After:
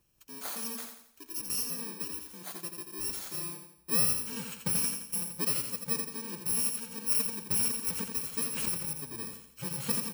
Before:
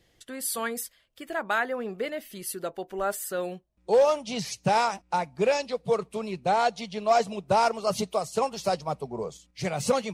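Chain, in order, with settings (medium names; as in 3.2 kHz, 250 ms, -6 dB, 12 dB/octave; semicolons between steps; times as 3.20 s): bit-reversed sample order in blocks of 64 samples; feedback delay 85 ms, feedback 42%, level -6 dB; 8.39–9.03 s: swell ahead of each attack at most 39 dB/s; trim -7.5 dB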